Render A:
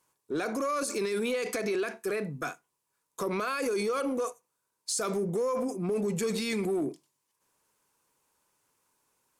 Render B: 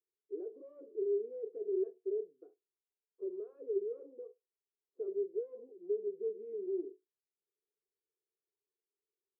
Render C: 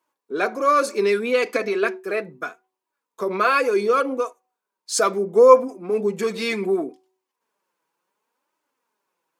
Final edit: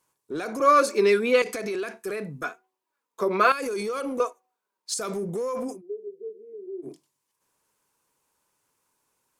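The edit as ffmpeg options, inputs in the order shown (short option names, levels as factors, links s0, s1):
-filter_complex "[2:a]asplit=3[s0][s1][s2];[0:a]asplit=5[s3][s4][s5][s6][s7];[s3]atrim=end=0.602[s8];[s0]atrim=start=0.598:end=1.422[s9];[s4]atrim=start=1.418:end=2.442[s10];[s1]atrim=start=2.438:end=3.522[s11];[s5]atrim=start=3.518:end=4.202[s12];[s2]atrim=start=4.198:end=4.942[s13];[s6]atrim=start=4.938:end=5.82[s14];[1:a]atrim=start=5.72:end=6.92[s15];[s7]atrim=start=6.82[s16];[s8][s9]acrossfade=d=0.004:c1=hsin:c2=hsin[s17];[s17][s10]acrossfade=d=0.004:c1=hsin:c2=hsin[s18];[s18][s11]acrossfade=d=0.004:c1=hsin:c2=hsin[s19];[s19][s12]acrossfade=d=0.004:c1=hsin:c2=hsin[s20];[s20][s13]acrossfade=d=0.004:c1=hsin:c2=hsin[s21];[s21][s14]acrossfade=d=0.004:c1=hsin:c2=hsin[s22];[s22][s15]acrossfade=d=0.1:c1=tri:c2=tri[s23];[s23][s16]acrossfade=d=0.1:c1=tri:c2=tri"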